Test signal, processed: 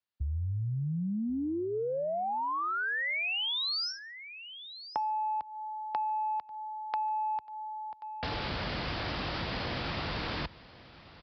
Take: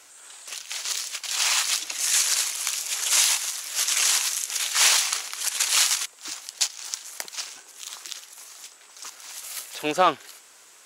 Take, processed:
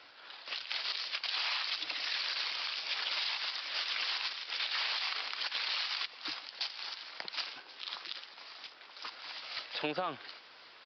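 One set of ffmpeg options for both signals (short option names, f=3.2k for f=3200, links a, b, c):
-filter_complex "[0:a]highpass=50,equalizer=f=400:w=7.1:g=-5,acrossover=split=130[a][b];[b]alimiter=limit=-16.5dB:level=0:latency=1:release=61[c];[a][c]amix=inputs=2:normalize=0,acontrast=65,aresample=11025,aresample=44100,asplit=2[d][e];[e]aecho=0:1:1083:0.0891[f];[d][f]amix=inputs=2:normalize=0,acompressor=threshold=-24dB:ratio=10,asplit=2[g][h];[h]adelay=145.8,volume=-27dB,highshelf=f=4k:g=-3.28[i];[g][i]amix=inputs=2:normalize=0,volume=-6.5dB"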